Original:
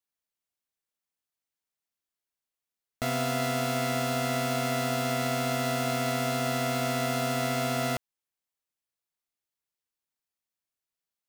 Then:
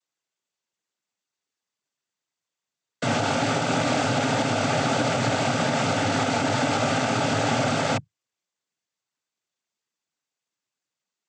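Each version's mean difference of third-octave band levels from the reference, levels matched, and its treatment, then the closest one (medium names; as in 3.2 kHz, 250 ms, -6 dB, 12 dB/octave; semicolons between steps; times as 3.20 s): 10.5 dB: noise-vocoded speech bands 16; peak limiter -20.5 dBFS, peak gain reduction 4.5 dB; trim +7 dB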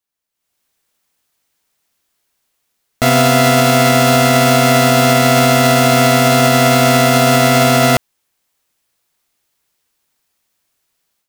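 1.5 dB: level rider gain up to 15.5 dB; loudness maximiser +7 dB; trim -1 dB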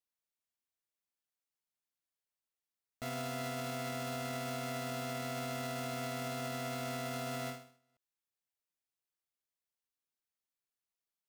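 4.5 dB: peak limiter -25.5 dBFS, peak gain reduction 7.5 dB; endings held to a fixed fall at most 120 dB/s; trim -5.5 dB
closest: second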